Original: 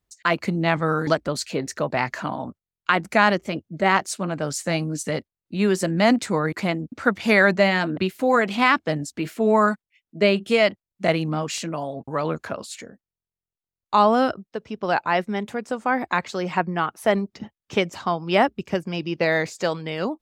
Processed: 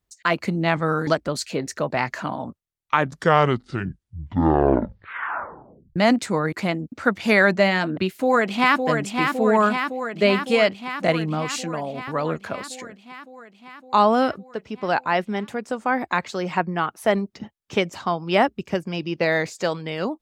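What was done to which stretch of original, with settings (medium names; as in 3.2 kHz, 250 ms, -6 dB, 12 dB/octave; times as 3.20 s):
2.39 s: tape stop 3.57 s
8.07–8.83 s: echo throw 560 ms, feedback 75%, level -5 dB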